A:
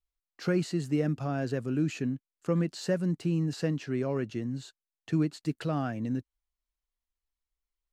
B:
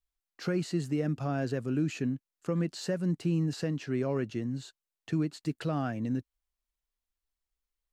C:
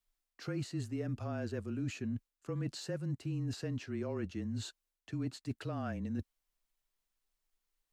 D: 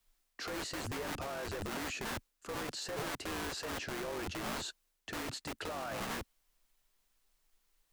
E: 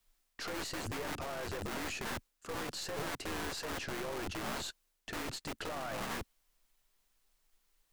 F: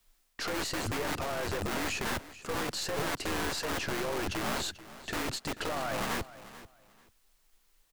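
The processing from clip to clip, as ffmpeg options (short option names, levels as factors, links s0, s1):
-af "alimiter=limit=0.0944:level=0:latency=1:release=179"
-af "areverse,acompressor=threshold=0.01:ratio=4,areverse,afreqshift=-25,volume=1.5"
-filter_complex "[0:a]acrossover=split=380[s0][s1];[s0]aeval=exprs='(mod(126*val(0)+1,2)-1)/126':c=same[s2];[s2][s1]amix=inputs=2:normalize=0,alimiter=level_in=7.5:limit=0.0631:level=0:latency=1:release=34,volume=0.133,volume=2.99"
-af "aeval=exprs='(tanh(63.1*val(0)+0.6)-tanh(0.6))/63.1':c=same,volume=1.5"
-af "aecho=1:1:438|876:0.15|0.0329,volume=2"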